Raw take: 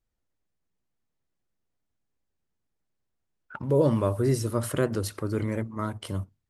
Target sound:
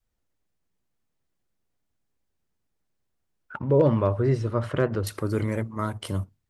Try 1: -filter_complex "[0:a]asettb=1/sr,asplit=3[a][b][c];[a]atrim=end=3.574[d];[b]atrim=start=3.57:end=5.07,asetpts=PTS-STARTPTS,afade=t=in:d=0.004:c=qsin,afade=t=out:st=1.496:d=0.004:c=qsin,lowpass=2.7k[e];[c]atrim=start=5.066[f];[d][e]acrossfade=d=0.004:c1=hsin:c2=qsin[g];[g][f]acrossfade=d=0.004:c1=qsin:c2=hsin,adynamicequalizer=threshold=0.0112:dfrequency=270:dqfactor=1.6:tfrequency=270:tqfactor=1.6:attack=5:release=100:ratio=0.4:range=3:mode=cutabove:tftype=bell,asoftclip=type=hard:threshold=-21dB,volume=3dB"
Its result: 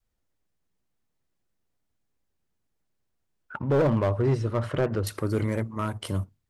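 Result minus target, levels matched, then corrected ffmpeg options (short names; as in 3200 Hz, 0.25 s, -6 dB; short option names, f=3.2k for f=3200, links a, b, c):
hard clip: distortion +24 dB
-filter_complex "[0:a]asettb=1/sr,asplit=3[a][b][c];[a]atrim=end=3.574[d];[b]atrim=start=3.57:end=5.07,asetpts=PTS-STARTPTS,afade=t=in:d=0.004:c=qsin,afade=t=out:st=1.496:d=0.004:c=qsin,lowpass=2.7k[e];[c]atrim=start=5.066[f];[d][e]acrossfade=d=0.004:c1=hsin:c2=qsin[g];[g][f]acrossfade=d=0.004:c1=qsin:c2=hsin,adynamicequalizer=threshold=0.0112:dfrequency=270:dqfactor=1.6:tfrequency=270:tqfactor=1.6:attack=5:release=100:ratio=0.4:range=3:mode=cutabove:tftype=bell,asoftclip=type=hard:threshold=-13.5dB,volume=3dB"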